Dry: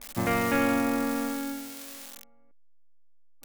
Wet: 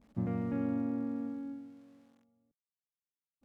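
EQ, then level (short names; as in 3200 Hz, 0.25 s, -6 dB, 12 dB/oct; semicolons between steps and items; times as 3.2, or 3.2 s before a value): band-pass 150 Hz, Q 1.5; 0.0 dB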